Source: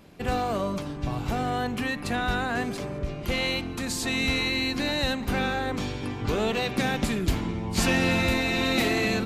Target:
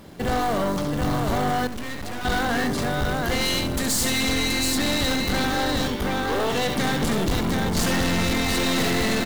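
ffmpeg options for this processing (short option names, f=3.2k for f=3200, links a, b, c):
-filter_complex "[0:a]asettb=1/sr,asplit=3[a][b][c];[a]atrim=end=3.414[d];[b]atrim=start=3.41:end=4.21,asetpts=PTS-STARTPTS,afade=t=in:d=0.004:c=qsin,afade=t=out:st=0.796:d=0.004:c=qsin,aemphasis=mode=production:type=cd[e];[c]atrim=start=4.206[f];[d][e]acrossfade=d=0.004:c1=hsin:c2=qsin[g];[g][f]acrossfade=d=0.004:c1=qsin:c2=hsin,asettb=1/sr,asplit=3[h][i][j];[h]atrim=end=5.884[k];[i]atrim=start=5.88:end=6.55,asetpts=PTS-STARTPTS,afade=t=in:d=0.004:c=qsin,afade=t=out:st=0.666:d=0.004:c=qsin,highpass=380,lowpass=3.8k[l];[j]atrim=start=6.546[m];[k][l]acrossfade=d=0.004:c1=hsin:c2=qsin[n];[n][m]acrossfade=d=0.004:c1=qsin:c2=hsin,acrusher=bits=4:mode=log:mix=0:aa=0.000001,asplit=2[o][p];[p]aecho=0:1:68|725:0.422|0.596[q];[o][q]amix=inputs=2:normalize=0,aeval=exprs='(tanh(28.2*val(0)+0.45)-tanh(0.45))/28.2':c=same,equalizer=f=2.5k:w=7.9:g=-9.5,asettb=1/sr,asplit=3[r][s][t];[r]atrim=end=1.674[u];[s]atrim=start=1.67:end=2.25,asetpts=PTS-STARTPTS,afade=t=in:d=0.004:c=qsin,afade=t=out:st=0.576:d=0.004:c=qsin,aeval=exprs='max(val(0),0)':c=same[v];[t]atrim=start=2.246[w];[u][v]acrossfade=d=0.004:c1=hsin:c2=qsin[x];[x][w]acrossfade=d=0.004:c1=qsin:c2=hsin,volume=9dB"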